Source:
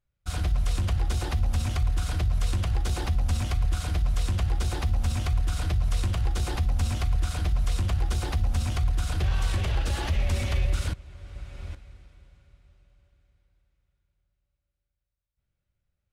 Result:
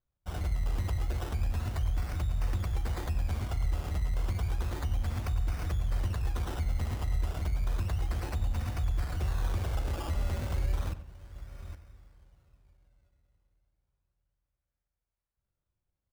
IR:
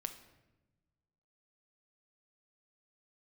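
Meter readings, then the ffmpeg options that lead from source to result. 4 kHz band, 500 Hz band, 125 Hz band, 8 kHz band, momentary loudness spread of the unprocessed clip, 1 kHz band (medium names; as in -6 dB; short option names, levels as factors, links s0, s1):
-10.5 dB, -4.0 dB, -5.5 dB, -10.0 dB, 4 LU, -5.0 dB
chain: -filter_complex "[0:a]acrusher=samples=17:mix=1:aa=0.000001:lfo=1:lforange=10.2:lforate=0.32,asplit=2[s0][s1];[s1]adelay=94,lowpass=f=3000:p=1,volume=0.224,asplit=2[s2][s3];[s3]adelay=94,lowpass=f=3000:p=1,volume=0.36,asplit=2[s4][s5];[s5]adelay=94,lowpass=f=3000:p=1,volume=0.36,asplit=2[s6][s7];[s7]adelay=94,lowpass=f=3000:p=1,volume=0.36[s8];[s0][s2][s4][s6][s8]amix=inputs=5:normalize=0,volume=0.501"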